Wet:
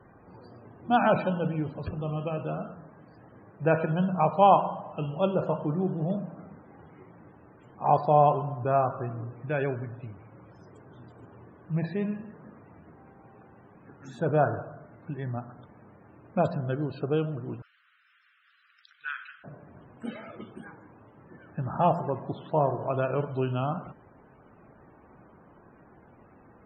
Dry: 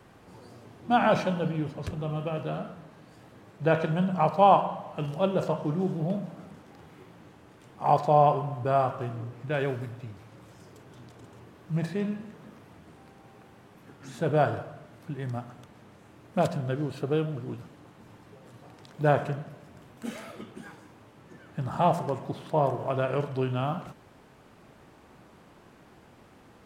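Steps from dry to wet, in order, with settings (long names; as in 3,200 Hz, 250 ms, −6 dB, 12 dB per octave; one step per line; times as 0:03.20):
0:17.62–0:19.44: elliptic band-pass filter 1,400–5,700 Hz, stop band 40 dB
spectral peaks only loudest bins 64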